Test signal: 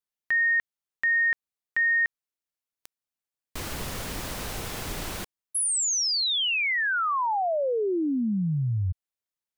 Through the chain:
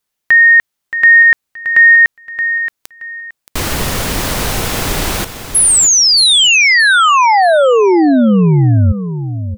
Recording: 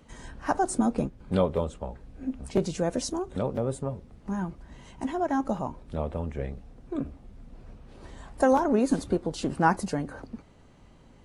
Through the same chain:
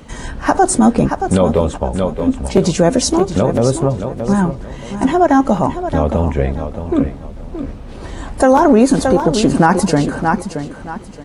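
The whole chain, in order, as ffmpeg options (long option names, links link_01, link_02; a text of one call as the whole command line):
ffmpeg -i in.wav -af "aecho=1:1:624|1248|1872:0.299|0.0776|0.0202,alimiter=level_in=17.5dB:limit=-1dB:release=50:level=0:latency=1,volume=-1dB" out.wav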